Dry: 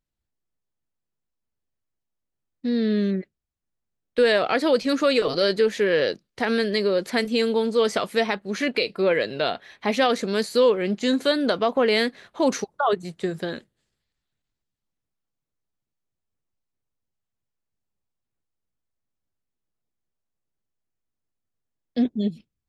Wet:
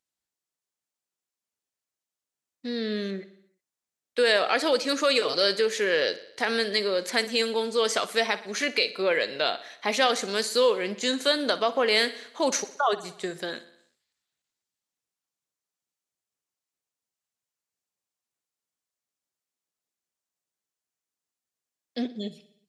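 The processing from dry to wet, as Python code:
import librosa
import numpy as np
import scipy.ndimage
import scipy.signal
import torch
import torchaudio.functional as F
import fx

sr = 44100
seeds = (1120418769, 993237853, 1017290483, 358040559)

p1 = fx.highpass(x, sr, hz=640.0, slope=6)
p2 = fx.peak_eq(p1, sr, hz=7200.0, db=6.5, octaves=1.3)
y = p2 + fx.echo_feedback(p2, sr, ms=61, feedback_pct=59, wet_db=-16.5, dry=0)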